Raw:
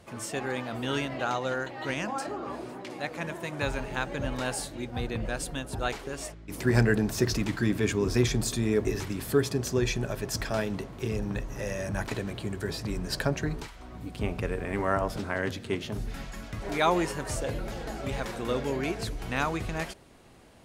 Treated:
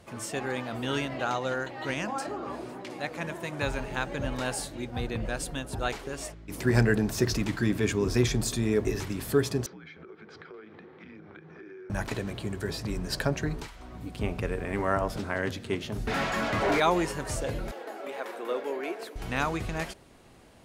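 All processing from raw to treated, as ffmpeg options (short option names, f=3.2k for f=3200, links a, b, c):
-filter_complex "[0:a]asettb=1/sr,asplit=3[a][b][c];[a]atrim=end=9.664[d];[b]atrim=start=9.66:end=11.9,asetpts=PTS-STARTPTS,afade=t=in:d=0.004:c=qsin,afade=t=out:st=2.236:d=0.004:c=qsin,afreqshift=-200,highpass=340,equalizer=f=370:t=q:w=4:g=9,equalizer=f=640:t=q:w=4:g=-8,equalizer=f=930:t=q:w=4:g=-6,equalizer=f=2.8k:t=q:w=4:g=-9,lowpass=f=3k:w=0.5412,lowpass=f=3k:w=1.3066,acompressor=threshold=-44dB:ratio=6:attack=3.2:release=140:knee=1:detection=peak[e];[c]atrim=start=11.896[f];[d][e]acrossfade=d=0.004:c1=hsin:c2=qsin[g];[g][f]acrossfade=d=0.004:c1=qsin:c2=hsin,asettb=1/sr,asplit=3[h][i][j];[h]atrim=end=16.074[k];[i]atrim=start=16.07:end=16.8,asetpts=PTS-STARTPTS,afade=t=in:d=0.004:c=qsin,afade=t=out:st=0.726:d=0.004:c=qsin,highpass=48,asplit=2[l][m];[m]highpass=f=720:p=1,volume=31dB,asoftclip=type=tanh:threshold=-15.5dB[n];[l][n]amix=inputs=2:normalize=0,lowpass=f=1.3k:p=1,volume=-6dB[o];[j]atrim=start=16.796[p];[k][o]acrossfade=d=0.004:c1=hsin:c2=qsin[q];[q][p]acrossfade=d=0.004:c1=qsin:c2=hsin,asettb=1/sr,asplit=3[r][s][t];[r]atrim=end=17.714[u];[s]atrim=start=17.71:end=19.16,asetpts=PTS-STARTPTS,afade=t=in:d=0.004:c=qsin,afade=t=out:st=1.446:d=0.004:c=qsin,highpass=f=340:w=0.5412,highpass=f=340:w=1.3066,equalizer=f=6.1k:t=o:w=1.9:g=-10.5[v];[t]atrim=start=19.156[w];[u][v]acrossfade=d=0.004:c1=hsin:c2=qsin[x];[x][w]acrossfade=d=0.004:c1=qsin:c2=hsin"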